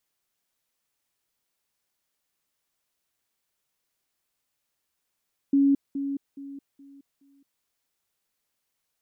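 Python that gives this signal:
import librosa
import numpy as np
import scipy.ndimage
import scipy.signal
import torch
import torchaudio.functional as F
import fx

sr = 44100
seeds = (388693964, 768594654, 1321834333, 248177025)

y = fx.level_ladder(sr, hz=278.0, from_db=-16.5, step_db=-10.0, steps=5, dwell_s=0.22, gap_s=0.2)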